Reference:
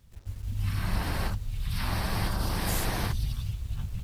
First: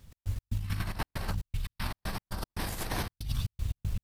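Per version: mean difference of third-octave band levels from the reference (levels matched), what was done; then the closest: 8.5 dB: notches 60/120/180 Hz; negative-ratio compressor -32 dBFS, ratio -0.5; step gate "x.x.xxxx.xx.x.x." 117 bpm -60 dB; gain +1.5 dB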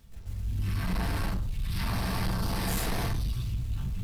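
2.5 dB: shoebox room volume 450 m³, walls furnished, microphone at 1.6 m; reverse; upward compressor, threshold -38 dBFS; reverse; soft clip -24 dBFS, distortion -12 dB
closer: second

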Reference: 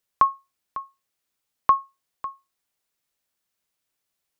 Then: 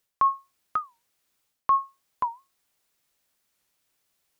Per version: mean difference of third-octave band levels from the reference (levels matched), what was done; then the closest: 2.0 dB: reverse; compressor 10:1, threshold -25 dBFS, peak gain reduction 13.5 dB; reverse; record warp 45 rpm, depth 250 cents; gain +6 dB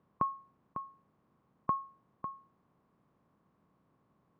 4.0 dB: per-bin compression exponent 0.6; band-pass 170 Hz, Q 1.4; gain +4 dB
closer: first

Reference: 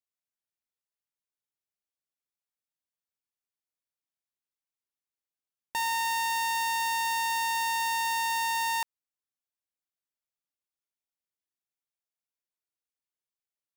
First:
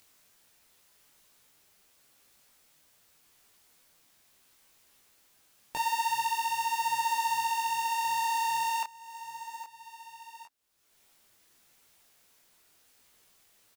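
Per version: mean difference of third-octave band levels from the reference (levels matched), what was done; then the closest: 3.5 dB: sample leveller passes 3; feedback echo 0.811 s, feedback 24%, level -22 dB; upward compressor, threshold -31 dBFS; detuned doubles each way 29 cents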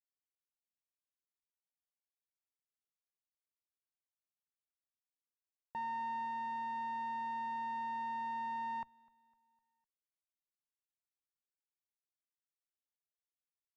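13.5 dB: octaver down 2 oct, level +1 dB; LPF 1100 Hz 12 dB/oct; on a send: feedback echo 0.253 s, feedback 47%, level -17.5 dB; on the sum: upward expander 1.5:1, over -50 dBFS; gain -6.5 dB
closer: first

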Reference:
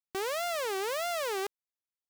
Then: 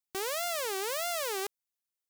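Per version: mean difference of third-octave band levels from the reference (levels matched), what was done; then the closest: 2.5 dB: high shelf 4200 Hz +9 dB; gain -2.5 dB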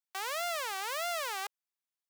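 5.5 dB: HPF 680 Hz 24 dB/oct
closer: first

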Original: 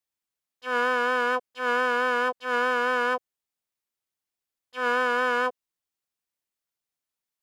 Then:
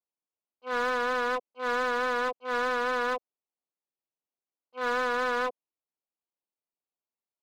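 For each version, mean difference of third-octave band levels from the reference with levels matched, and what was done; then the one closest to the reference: 3.0 dB: Wiener smoothing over 25 samples; BPF 210–5200 Hz; low shelf 440 Hz -3.5 dB; in parallel at -5 dB: wavefolder -27 dBFS; on the sum: gain -3 dB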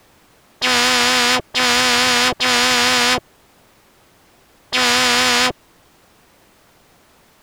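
14.0 dB: high shelf 6600 Hz -9 dB; in parallel at -2.5 dB: limiter -23.5 dBFS, peak gain reduction 7.5 dB; on the sum: tilt shelf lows +6 dB, about 1400 Hz; spectral compressor 10:1; gain +8.5 dB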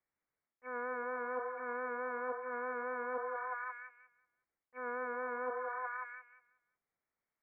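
8.0 dB: Chebyshev low-pass 2300 Hz, order 8; delay with a stepping band-pass 0.183 s, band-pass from 540 Hz, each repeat 0.7 oct, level -7.5 dB; reverse; compressor 16:1, threshold -39 dBFS, peak gain reduction 18.5 dB; reverse; dynamic EQ 1700 Hz, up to -3 dB, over -57 dBFS, Q 1.1; gain +4 dB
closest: first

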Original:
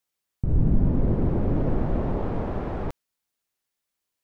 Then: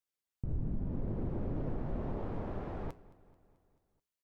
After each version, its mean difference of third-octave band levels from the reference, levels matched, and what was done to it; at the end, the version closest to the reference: 1.5 dB: compressor, threshold -20 dBFS, peak gain reduction 6.5 dB; flange 0.59 Hz, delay 6.6 ms, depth 3.7 ms, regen -82%; feedback echo 0.218 s, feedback 59%, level -20.5 dB; gain -6 dB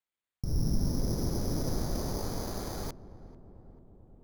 10.0 dB: careless resampling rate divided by 8×, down filtered, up hold; high shelf 2000 Hz +10 dB; darkening echo 0.441 s, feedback 71%, low-pass 1100 Hz, level -17 dB; gain -8.5 dB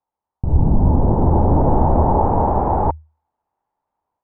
5.0 dB: bell 78 Hz +11.5 dB 0.24 oct; AGC gain up to 8 dB; synth low-pass 880 Hz, resonance Q 6.5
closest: first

